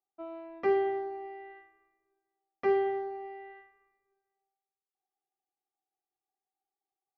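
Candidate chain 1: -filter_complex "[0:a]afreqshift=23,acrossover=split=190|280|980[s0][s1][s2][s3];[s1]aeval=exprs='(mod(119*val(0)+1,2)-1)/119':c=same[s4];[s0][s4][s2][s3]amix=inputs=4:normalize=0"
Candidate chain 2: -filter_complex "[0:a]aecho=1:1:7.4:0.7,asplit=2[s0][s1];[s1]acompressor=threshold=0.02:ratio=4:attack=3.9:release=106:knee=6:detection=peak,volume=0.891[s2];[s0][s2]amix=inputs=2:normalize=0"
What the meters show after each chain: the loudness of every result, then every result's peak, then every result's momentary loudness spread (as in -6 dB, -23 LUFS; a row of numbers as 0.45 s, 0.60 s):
-33.0 LUFS, -26.5 LUFS; -19.0 dBFS, -12.5 dBFS; 18 LU, 17 LU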